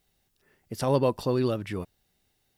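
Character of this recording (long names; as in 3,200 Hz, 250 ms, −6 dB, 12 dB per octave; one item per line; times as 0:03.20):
background noise floor −73 dBFS
spectral slope −6.5 dB per octave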